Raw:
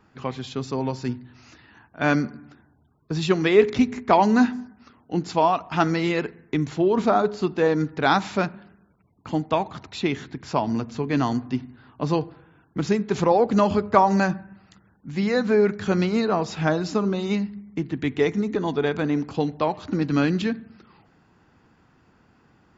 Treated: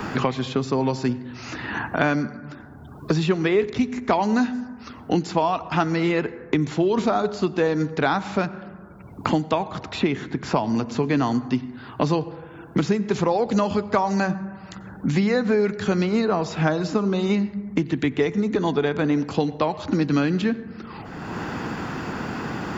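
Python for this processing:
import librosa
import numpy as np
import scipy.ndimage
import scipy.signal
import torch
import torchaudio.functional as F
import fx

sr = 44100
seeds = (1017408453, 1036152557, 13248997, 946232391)

y = fx.rev_plate(x, sr, seeds[0], rt60_s=0.91, hf_ratio=0.35, predelay_ms=80, drr_db=19.5)
y = fx.band_squash(y, sr, depth_pct=100)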